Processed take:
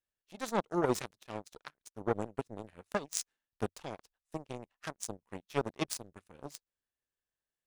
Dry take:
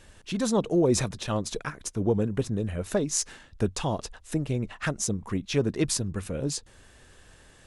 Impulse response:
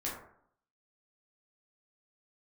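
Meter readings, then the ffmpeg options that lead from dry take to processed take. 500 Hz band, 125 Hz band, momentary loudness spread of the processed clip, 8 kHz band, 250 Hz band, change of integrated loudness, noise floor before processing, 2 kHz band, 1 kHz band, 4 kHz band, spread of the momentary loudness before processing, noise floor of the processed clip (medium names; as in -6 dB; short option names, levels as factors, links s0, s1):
-9.0 dB, -15.5 dB, 17 LU, -12.0 dB, -12.5 dB, -9.5 dB, -55 dBFS, -7.0 dB, -2.5 dB, -11.0 dB, 9 LU, under -85 dBFS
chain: -af "aeval=exprs='0.422*(cos(1*acos(clip(val(0)/0.422,-1,1)))-cos(1*PI/2))+0.0596*(cos(7*acos(clip(val(0)/0.422,-1,1)))-cos(7*PI/2))':c=same,lowshelf=f=230:g=-8.5,volume=0.75"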